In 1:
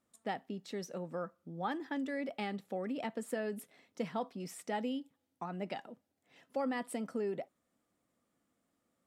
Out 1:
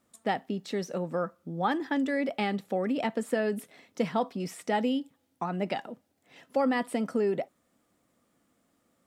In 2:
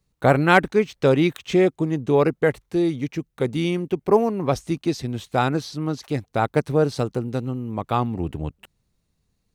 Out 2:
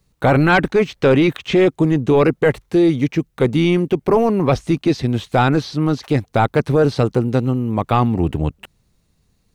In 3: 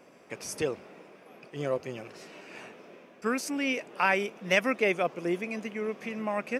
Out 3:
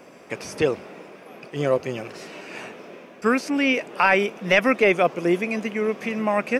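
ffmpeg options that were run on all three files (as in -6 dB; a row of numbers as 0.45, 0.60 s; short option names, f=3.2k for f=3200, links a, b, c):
-filter_complex "[0:a]acrossover=split=4300[a][b];[b]acompressor=threshold=-52dB:ratio=4:attack=1:release=60[c];[a][c]amix=inputs=2:normalize=0,apsyclip=17dB,volume=-8dB"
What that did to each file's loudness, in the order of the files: +9.0, +5.0, +8.5 LU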